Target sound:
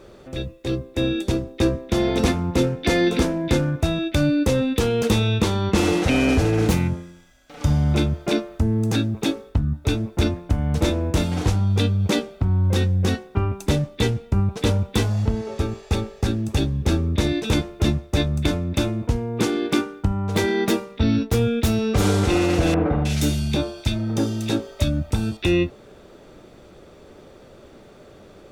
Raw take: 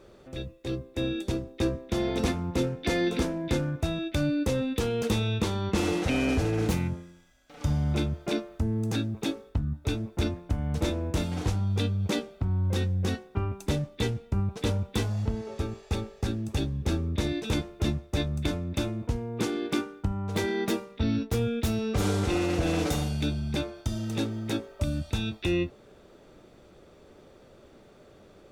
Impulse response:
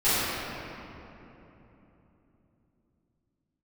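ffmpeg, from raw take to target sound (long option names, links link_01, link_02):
-filter_complex "[0:a]asettb=1/sr,asplit=3[link_01][link_02][link_03];[link_01]atrim=end=22.744[link_04];[link_02]atrim=start=22.74:end=25.37,asetpts=PTS-STARTPTS,afade=type=in:duration=0.004:curve=qsin,afade=type=out:start_time=2.626:duration=0.004:curve=qsin,acrossover=split=1800[link_05][link_06];[link_06]adelay=310[link_07];[link_05][link_07]amix=inputs=2:normalize=0,atrim=end_sample=115983[link_08];[link_03]atrim=start=25.366[link_09];[link_04][link_08]acrossfade=duration=0.004:curve1=hsin:curve2=qsin[link_10];[link_10][link_09]acrossfade=duration=0.004:curve1=qsin:curve2=hsin,volume=7.5dB"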